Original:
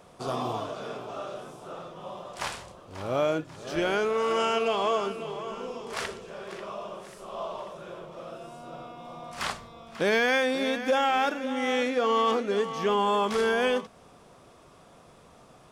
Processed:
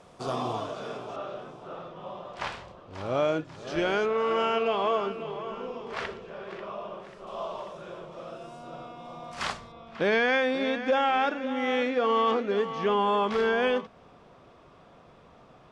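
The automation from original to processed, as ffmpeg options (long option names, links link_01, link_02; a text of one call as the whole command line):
ffmpeg -i in.wav -af "asetnsamples=nb_out_samples=441:pad=0,asendcmd='1.16 lowpass f 3600;2.93 lowpass f 5700;4.06 lowpass f 3200;7.27 lowpass f 7400;9.72 lowpass f 3600',lowpass=8800" out.wav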